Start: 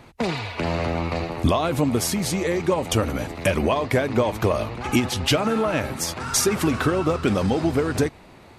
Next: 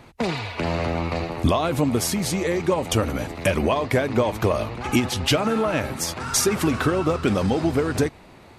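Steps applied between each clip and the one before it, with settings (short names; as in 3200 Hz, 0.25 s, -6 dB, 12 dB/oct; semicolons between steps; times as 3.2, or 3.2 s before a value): nothing audible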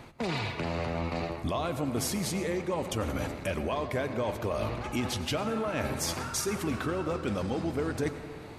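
reverse; compressor 6:1, threshold -29 dBFS, peak gain reduction 14.5 dB; reverse; reverb RT60 1.8 s, pre-delay 83 ms, DRR 10 dB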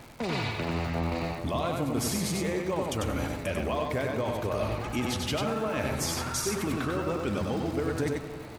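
crackle 150/s -39 dBFS; on a send: echo 96 ms -3.5 dB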